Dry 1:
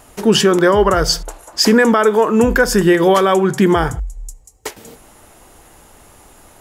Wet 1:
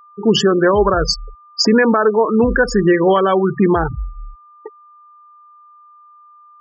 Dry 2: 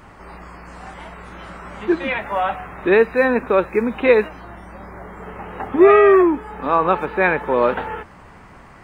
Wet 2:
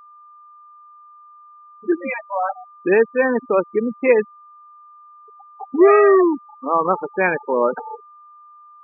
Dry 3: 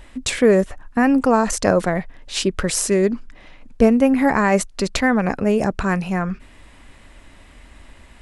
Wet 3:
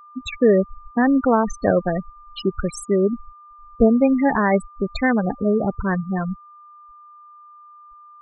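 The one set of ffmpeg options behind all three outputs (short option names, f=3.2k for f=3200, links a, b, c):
-af "afftfilt=real='re*gte(hypot(re,im),0.224)':imag='im*gte(hypot(re,im),0.224)':win_size=1024:overlap=0.75,aeval=exprs='val(0)+0.00794*sin(2*PI*1200*n/s)':c=same,volume=-1dB"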